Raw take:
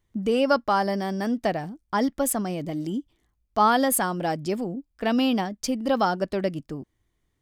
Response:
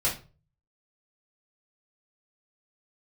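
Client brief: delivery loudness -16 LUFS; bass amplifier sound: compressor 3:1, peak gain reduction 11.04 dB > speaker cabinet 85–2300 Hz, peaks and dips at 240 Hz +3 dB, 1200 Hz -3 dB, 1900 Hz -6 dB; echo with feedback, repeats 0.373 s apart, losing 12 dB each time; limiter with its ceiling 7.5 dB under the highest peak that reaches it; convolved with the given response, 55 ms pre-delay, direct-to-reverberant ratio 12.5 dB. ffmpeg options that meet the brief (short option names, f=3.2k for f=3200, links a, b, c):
-filter_complex "[0:a]alimiter=limit=-15.5dB:level=0:latency=1,aecho=1:1:373|746|1119:0.251|0.0628|0.0157,asplit=2[a][b];[1:a]atrim=start_sample=2205,adelay=55[c];[b][c]afir=irnorm=-1:irlink=0,volume=-21.5dB[d];[a][d]amix=inputs=2:normalize=0,acompressor=threshold=-34dB:ratio=3,highpass=f=85:w=0.5412,highpass=f=85:w=1.3066,equalizer=f=240:t=q:w=4:g=3,equalizer=f=1.2k:t=q:w=4:g=-3,equalizer=f=1.9k:t=q:w=4:g=-6,lowpass=f=2.3k:w=0.5412,lowpass=f=2.3k:w=1.3066,volume=19.5dB"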